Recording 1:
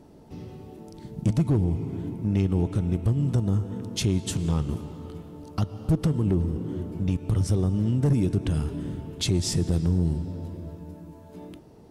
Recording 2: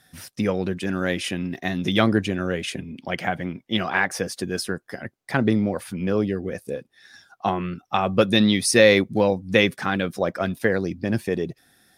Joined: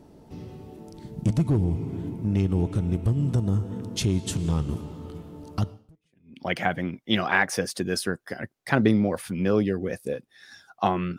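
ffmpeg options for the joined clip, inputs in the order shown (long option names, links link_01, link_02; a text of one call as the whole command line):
ffmpeg -i cue0.wav -i cue1.wav -filter_complex "[0:a]apad=whole_dur=11.18,atrim=end=11.18,atrim=end=6.4,asetpts=PTS-STARTPTS[link_01];[1:a]atrim=start=2.3:end=7.8,asetpts=PTS-STARTPTS[link_02];[link_01][link_02]acrossfade=duration=0.72:curve1=exp:curve2=exp" out.wav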